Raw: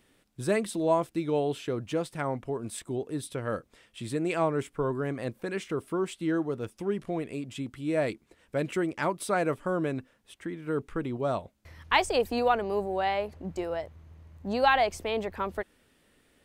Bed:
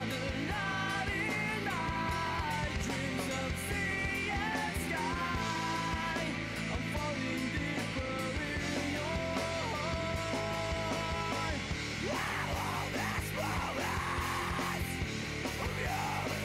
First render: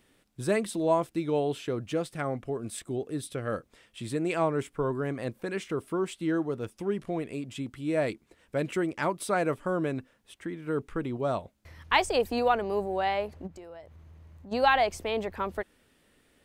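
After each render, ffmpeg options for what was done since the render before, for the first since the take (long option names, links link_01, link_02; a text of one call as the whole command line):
ffmpeg -i in.wav -filter_complex "[0:a]asettb=1/sr,asplit=3[link_01][link_02][link_03];[link_01]atrim=end=1.784[link_04];[link_02]atrim=start=1.78:end=3.54,asetpts=PTS-STARTPTS,afade=type=in:duration=0.004:curve=qsin,afade=type=out:start_time=1.756:duration=0.004:curve=qsin,bandreject=frequency=940:width=6.5[link_05];[link_03]atrim=start=3.536[link_06];[link_04][link_05]acrossfade=duration=0.004:curve1=hsin:curve2=qsin[link_07];[link_07][link_06]acrossfade=duration=0.004:curve1=qsin:curve2=hsin,asplit=3[link_08][link_09][link_10];[link_08]afade=type=out:start_time=13.46:duration=0.02[link_11];[link_09]acompressor=threshold=-47dB:ratio=3:attack=3.2:release=140:knee=1:detection=peak,afade=type=in:start_time=13.46:duration=0.02,afade=type=out:start_time=14.51:duration=0.02[link_12];[link_10]afade=type=in:start_time=14.51:duration=0.02[link_13];[link_11][link_12][link_13]amix=inputs=3:normalize=0" out.wav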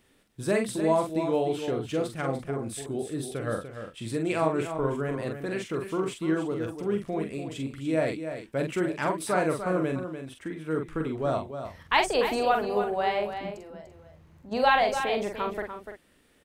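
ffmpeg -i in.wav -filter_complex "[0:a]asplit=2[link_01][link_02];[link_02]adelay=44,volume=-5dB[link_03];[link_01][link_03]amix=inputs=2:normalize=0,aecho=1:1:294:0.355" out.wav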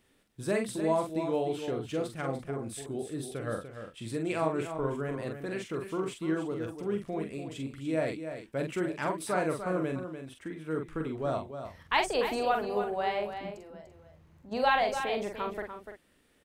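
ffmpeg -i in.wav -af "volume=-4dB" out.wav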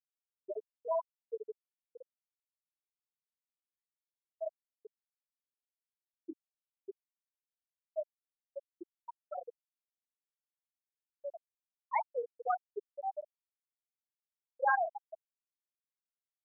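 ffmpeg -i in.wav -af "highpass=frequency=670:poles=1,afftfilt=real='re*gte(hypot(re,im),0.224)':imag='im*gte(hypot(re,im),0.224)':win_size=1024:overlap=0.75" out.wav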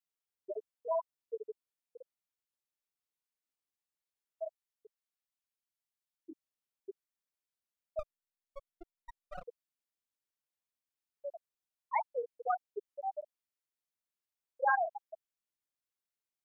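ffmpeg -i in.wav -filter_complex "[0:a]asplit=3[link_01][link_02][link_03];[link_01]afade=type=out:start_time=4.44:duration=0.02[link_04];[link_02]equalizer=frequency=340:width_type=o:width=2.5:gain=-6.5,afade=type=in:start_time=4.44:duration=0.02,afade=type=out:start_time=6.3:duration=0.02[link_05];[link_03]afade=type=in:start_time=6.3:duration=0.02[link_06];[link_04][link_05][link_06]amix=inputs=3:normalize=0,asettb=1/sr,asplit=3[link_07][link_08][link_09];[link_07]atrim=end=7.994[link_10];[link_08]atrim=start=7.99:end=9.46,asetpts=PTS-STARTPTS,afade=type=in:duration=0.004:curve=qsin,afade=type=out:start_time=1.466:duration=0.004:curve=qsin,aeval=exprs='max(val(0),0)':channel_layout=same[link_11];[link_09]atrim=start=9.456[link_12];[link_10][link_11]acrossfade=duration=0.004:curve1=hsin:curve2=qsin[link_13];[link_13][link_12]acrossfade=duration=0.004:curve1=qsin:curve2=hsin" out.wav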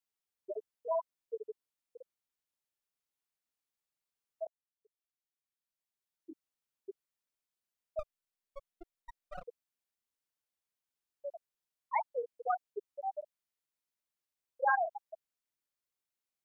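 ffmpeg -i in.wav -filter_complex "[0:a]asplit=2[link_01][link_02];[link_01]atrim=end=4.47,asetpts=PTS-STARTPTS,afade=type=out:start_time=4.466:duration=0.004:curve=hsin[link_03];[link_02]atrim=start=4.47,asetpts=PTS-STARTPTS,afade=type=in:duration=1.83[link_04];[link_03][link_04]concat=n=2:v=0:a=1" out.wav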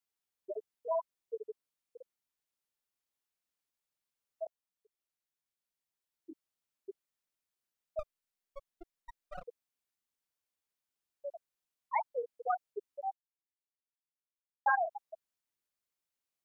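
ffmpeg -i in.wav -filter_complex "[0:a]asplit=3[link_01][link_02][link_03];[link_01]atrim=end=13.13,asetpts=PTS-STARTPTS,afade=type=out:start_time=13.126:duration=0.004:curve=hsin[link_04];[link_02]atrim=start=13.13:end=14.66,asetpts=PTS-STARTPTS,volume=0[link_05];[link_03]atrim=start=14.66,asetpts=PTS-STARTPTS,afade=type=in:duration=0.004:curve=hsin[link_06];[link_04][link_05][link_06]concat=n=3:v=0:a=1" out.wav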